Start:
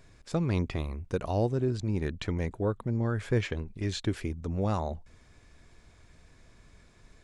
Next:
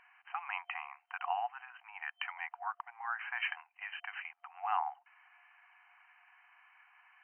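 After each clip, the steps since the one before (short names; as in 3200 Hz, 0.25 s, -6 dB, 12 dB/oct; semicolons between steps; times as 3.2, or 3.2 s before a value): FFT band-pass 700–3100 Hz; gain +3.5 dB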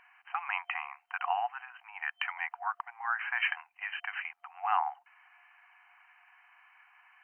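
dynamic EQ 1700 Hz, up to +4 dB, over -47 dBFS, Q 0.85; gain +2.5 dB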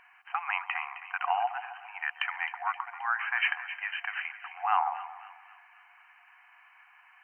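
split-band echo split 1500 Hz, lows 0.134 s, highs 0.263 s, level -11.5 dB; gain +2.5 dB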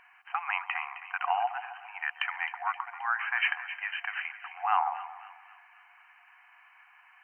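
nothing audible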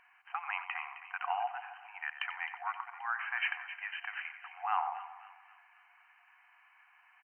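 echo 91 ms -13 dB; gain -6 dB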